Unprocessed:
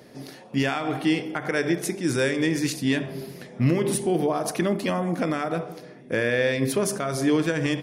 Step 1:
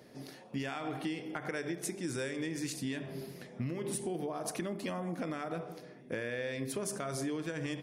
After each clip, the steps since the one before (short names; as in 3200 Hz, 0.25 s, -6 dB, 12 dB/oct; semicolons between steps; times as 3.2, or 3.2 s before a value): compressor, threshold -26 dBFS, peak gain reduction 10 dB; dynamic EQ 8000 Hz, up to +5 dB, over -51 dBFS, Q 2; gain -7.5 dB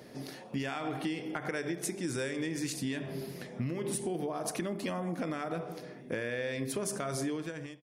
ending faded out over 0.55 s; in parallel at -1 dB: compressor, threshold -44 dBFS, peak gain reduction 11.5 dB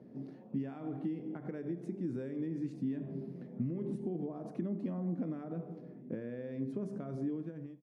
band-pass 210 Hz, Q 1.5; gain +2 dB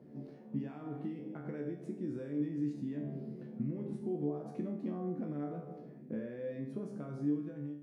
resonator 73 Hz, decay 0.53 s, harmonics all, mix 90%; gain +10 dB